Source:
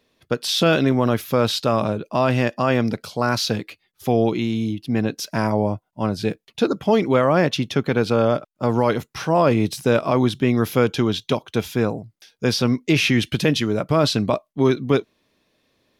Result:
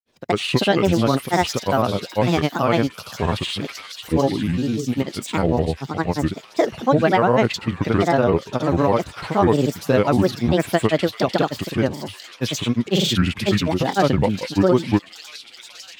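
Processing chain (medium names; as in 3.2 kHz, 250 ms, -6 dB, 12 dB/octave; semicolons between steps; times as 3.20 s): feedback echo behind a high-pass 451 ms, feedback 72%, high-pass 2.8 kHz, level -6.5 dB; dynamic bell 6 kHz, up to -6 dB, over -38 dBFS, Q 0.8; granulator, pitch spread up and down by 7 st; trim +2 dB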